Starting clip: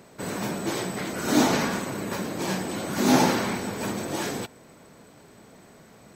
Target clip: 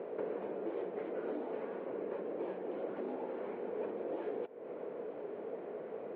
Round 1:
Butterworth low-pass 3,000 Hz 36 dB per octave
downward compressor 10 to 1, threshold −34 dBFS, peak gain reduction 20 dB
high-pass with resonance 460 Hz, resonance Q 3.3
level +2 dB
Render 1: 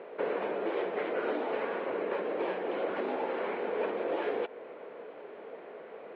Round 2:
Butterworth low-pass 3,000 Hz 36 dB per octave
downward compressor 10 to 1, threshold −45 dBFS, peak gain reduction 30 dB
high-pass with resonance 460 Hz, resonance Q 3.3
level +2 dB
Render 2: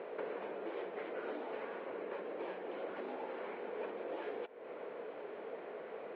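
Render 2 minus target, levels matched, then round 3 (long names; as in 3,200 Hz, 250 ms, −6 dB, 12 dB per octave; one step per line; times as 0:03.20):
1,000 Hz band +4.0 dB
Butterworth low-pass 3,000 Hz 36 dB per octave
downward compressor 10 to 1, threshold −45 dBFS, peak gain reduction 30 dB
high-pass with resonance 460 Hz, resonance Q 3.3
tilt shelving filter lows +8.5 dB, about 730 Hz
level +2 dB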